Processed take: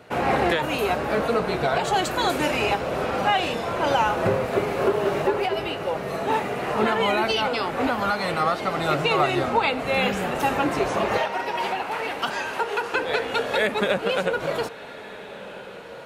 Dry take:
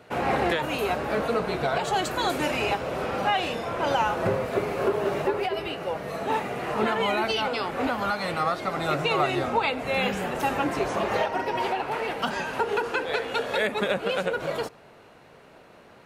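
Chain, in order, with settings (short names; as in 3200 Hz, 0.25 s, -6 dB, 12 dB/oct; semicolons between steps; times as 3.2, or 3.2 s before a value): 11.18–12.94 HPF 680 Hz 6 dB/oct; diffused feedback echo 1.479 s, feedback 49%, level -16 dB; gain +3 dB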